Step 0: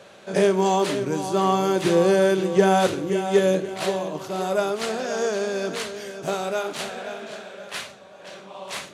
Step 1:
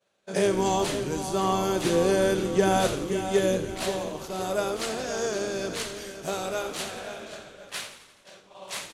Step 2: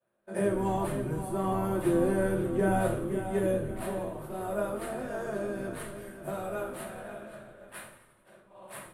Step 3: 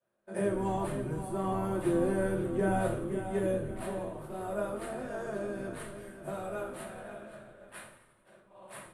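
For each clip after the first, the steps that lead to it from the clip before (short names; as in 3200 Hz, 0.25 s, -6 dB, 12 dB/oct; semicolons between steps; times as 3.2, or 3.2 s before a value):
expander -34 dBFS; high shelf 4500 Hz +7.5 dB; on a send: frequency-shifting echo 85 ms, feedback 62%, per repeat -80 Hz, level -11.5 dB; on the sum: gain -5 dB
EQ curve 1500 Hz 0 dB, 6400 Hz -24 dB, 9100 Hz 0 dB; on a send at -1 dB: reverb RT60 0.25 s, pre-delay 3 ms; on the sum: gain -7 dB
LPF 11000 Hz 24 dB/oct; gain -2.5 dB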